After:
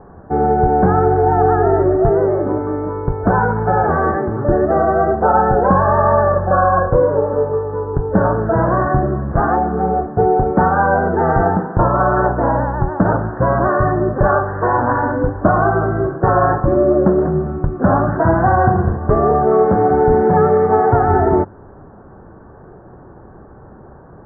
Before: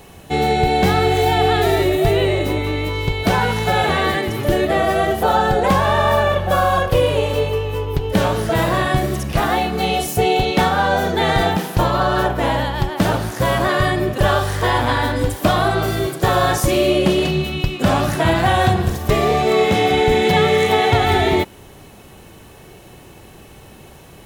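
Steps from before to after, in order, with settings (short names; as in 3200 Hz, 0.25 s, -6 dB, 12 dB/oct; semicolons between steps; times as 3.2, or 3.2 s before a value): steep low-pass 1600 Hz 72 dB/oct; notches 50/100/150 Hz; gain +3 dB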